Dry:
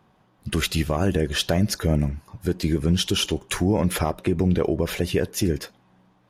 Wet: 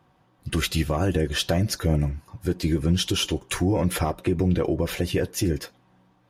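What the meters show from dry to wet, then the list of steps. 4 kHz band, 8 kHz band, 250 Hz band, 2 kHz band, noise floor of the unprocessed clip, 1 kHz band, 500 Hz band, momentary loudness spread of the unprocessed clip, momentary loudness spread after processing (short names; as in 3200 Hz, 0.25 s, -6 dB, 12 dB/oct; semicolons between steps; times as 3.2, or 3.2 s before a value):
-1.5 dB, -1.0 dB, -1.5 dB, -1.5 dB, -61 dBFS, -1.0 dB, -1.5 dB, 7 LU, 7 LU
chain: notch comb 210 Hz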